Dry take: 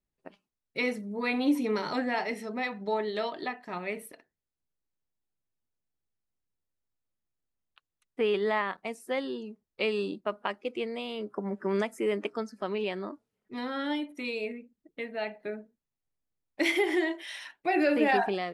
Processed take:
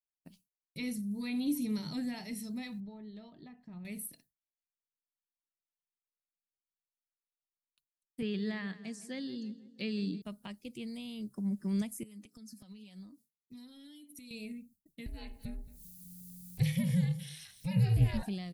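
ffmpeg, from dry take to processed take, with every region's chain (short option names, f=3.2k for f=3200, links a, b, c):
-filter_complex "[0:a]asettb=1/sr,asplit=3[a][b][c];[a]atrim=end=2.804[d];[b]atrim=start=2.8:end=3.85,asetpts=PTS-STARTPTS,afade=t=in:d=0.004:c=qsin,afade=t=out:st=1.046:d=0.004:c=qsin,lowpass=1.5k,acompressor=threshold=-48dB:ratio=1.5:attack=3.2:release=140:knee=1:detection=peak[e];[c]atrim=start=3.846[f];[d][e]acrossfade=d=0.004:c1=hsin:c2=qsin[g];[g][f]acrossfade=d=0.004:c1=qsin:c2=hsin,asettb=1/sr,asplit=3[h][i][j];[h]atrim=end=8.224[k];[i]atrim=start=8.22:end=10.22,asetpts=PTS-STARTPTS,afade=t=in:d=0.004:c=qsin,afade=t=out:st=1.996:d=0.004:c=qsin,highpass=120,equalizer=f=180:t=q:w=4:g=4,equalizer=f=310:t=q:w=4:g=5,equalizer=f=460:t=q:w=4:g=4,equalizer=f=930:t=q:w=4:g=-6,equalizer=f=1.7k:t=q:w=4:g=10,equalizer=f=4.5k:t=q:w=4:g=6,lowpass=f=7.2k:w=0.5412,lowpass=f=7.2k:w=1.3066,asplit=2[l][m];[m]adelay=162,lowpass=f=2k:p=1,volume=-15dB,asplit=2[n][o];[o]adelay=162,lowpass=f=2k:p=1,volume=0.54,asplit=2[p][q];[q]adelay=162,lowpass=f=2k:p=1,volume=0.54,asplit=2[r][s];[s]adelay=162,lowpass=f=2k:p=1,volume=0.54,asplit=2[t][u];[u]adelay=162,lowpass=f=2k:p=1,volume=0.54[v];[l][n][p][r][t][v]amix=inputs=6:normalize=0,atrim=end_sample=88200[w];[j]atrim=start=10.216[x];[k][w]acrossfade=d=0.004:c1=hsin:c2=qsin[y];[y][x]acrossfade=d=0.004:c1=qsin:c2=hsin,asettb=1/sr,asplit=3[z][aa][ab];[z]atrim=end=12.034[ac];[aa]atrim=start=12.03:end=14.31,asetpts=PTS-STARTPTS,afade=t=in:d=0.004:c=qsin,afade=t=out:st=2.276:d=0.004:c=qsin,highpass=150,aecho=1:1:4:0.55,atrim=end_sample=100548,acompressor=threshold=-44dB:ratio=8:attack=3.2:release=140:knee=1:detection=peak[ad];[ab]atrim=start=14.306[ae];[ac][ad]acrossfade=d=0.004:c1=hsin:c2=qsin[af];[af][ae]acrossfade=d=0.004:c1=qsin:c2=hsin,asettb=1/sr,asplit=3[ag][ah][ai];[ag]atrim=end=15.064[aj];[ah]atrim=start=15.06:end=18.23,asetpts=PTS-STARTPTS,afade=t=in:d=0.004:c=qsin,afade=t=out:st=3.166:d=0.004:c=qsin,acompressor=mode=upward:threshold=-32dB:ratio=2.5:attack=3.2:release=140:knee=2.83:detection=peak,aecho=1:1:222:0.119,atrim=end_sample=139797,aeval=exprs='val(0)*sin(2*PI*180*n/s)':c=same[ak];[ai]atrim=start=18.226[al];[aj][ak]acrossfade=d=0.004:c1=hsin:c2=qsin[am];[am][al]acrossfade=d=0.004:c1=qsin:c2=hsin,acrossover=split=3100[an][ao];[ao]acompressor=threshold=-56dB:ratio=4:attack=1:release=60[ap];[an][ap]amix=inputs=2:normalize=0,agate=range=-33dB:threshold=-56dB:ratio=3:detection=peak,firequalizer=gain_entry='entry(150,0);entry(390,-25);entry(1300,-28);entry(4100,-4);entry(11000,11)':delay=0.05:min_phase=1,volume=7.5dB"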